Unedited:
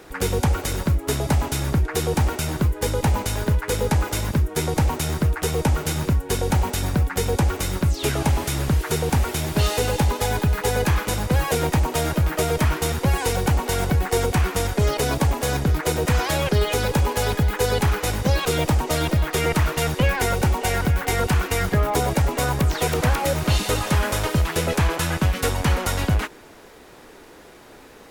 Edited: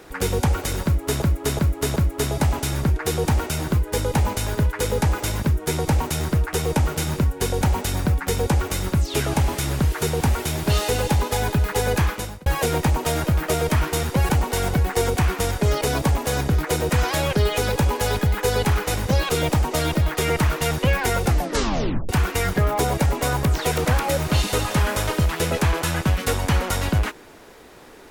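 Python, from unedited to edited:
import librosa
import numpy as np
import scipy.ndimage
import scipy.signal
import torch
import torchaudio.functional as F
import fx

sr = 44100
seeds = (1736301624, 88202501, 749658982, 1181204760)

y = fx.edit(x, sr, fx.repeat(start_s=0.85, length_s=0.37, count=4),
    fx.fade_out_span(start_s=10.92, length_s=0.43),
    fx.cut(start_s=13.18, length_s=0.27),
    fx.tape_stop(start_s=20.38, length_s=0.87), tone=tone)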